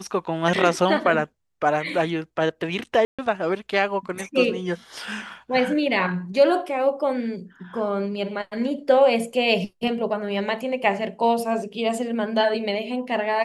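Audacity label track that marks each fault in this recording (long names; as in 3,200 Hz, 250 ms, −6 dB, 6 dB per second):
3.050000	3.190000	drop-out 136 ms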